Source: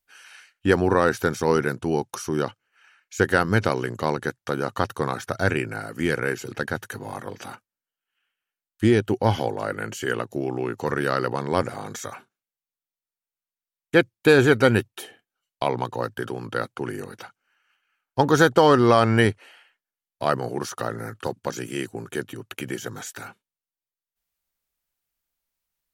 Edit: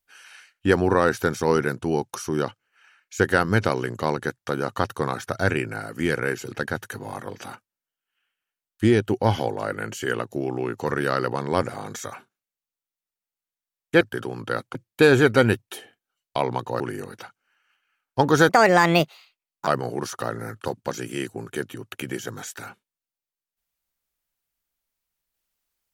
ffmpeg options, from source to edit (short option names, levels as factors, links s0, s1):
-filter_complex "[0:a]asplit=6[s0][s1][s2][s3][s4][s5];[s0]atrim=end=14.012[s6];[s1]atrim=start=16.058:end=16.802[s7];[s2]atrim=start=14.008:end=16.062[s8];[s3]atrim=start=16.798:end=18.494[s9];[s4]atrim=start=18.49:end=20.26,asetpts=PTS-STARTPTS,asetrate=66150,aresample=44100[s10];[s5]atrim=start=20.256[s11];[s6][s7]acrossfade=d=0.004:c1=hsin:c2=hsin[s12];[s12][s8]acrossfade=d=0.004:c1=hsin:c2=hsin[s13];[s13][s9]acrossfade=d=0.004:c1=hsin:c2=hsin[s14];[s14][s10]acrossfade=d=0.004:c1=hsin:c2=hsin[s15];[s15][s11]acrossfade=d=0.004:c1=hsin:c2=hsin"